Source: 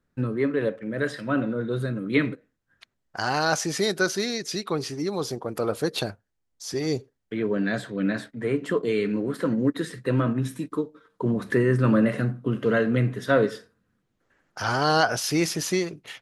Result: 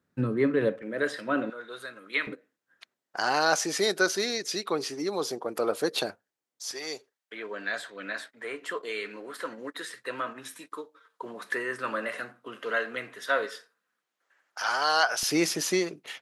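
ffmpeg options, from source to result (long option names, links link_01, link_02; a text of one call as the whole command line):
ffmpeg -i in.wav -af "asetnsamples=nb_out_samples=441:pad=0,asendcmd='0.82 highpass f 330;1.5 highpass f 980;2.27 highpass f 320;6.71 highpass f 830;15.23 highpass f 260',highpass=110" out.wav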